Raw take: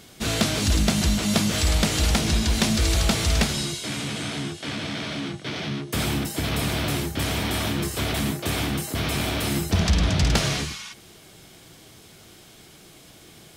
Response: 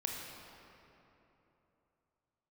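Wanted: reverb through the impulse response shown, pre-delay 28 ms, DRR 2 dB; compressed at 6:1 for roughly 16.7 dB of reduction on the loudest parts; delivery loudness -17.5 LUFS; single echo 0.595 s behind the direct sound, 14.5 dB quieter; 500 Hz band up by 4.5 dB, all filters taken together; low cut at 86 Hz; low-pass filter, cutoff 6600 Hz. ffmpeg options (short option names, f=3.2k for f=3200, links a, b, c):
-filter_complex "[0:a]highpass=86,lowpass=6.6k,equalizer=f=500:t=o:g=6,acompressor=threshold=-35dB:ratio=6,aecho=1:1:595:0.188,asplit=2[a][b];[1:a]atrim=start_sample=2205,adelay=28[c];[b][c]afir=irnorm=-1:irlink=0,volume=-4dB[d];[a][d]amix=inputs=2:normalize=0,volume=18dB"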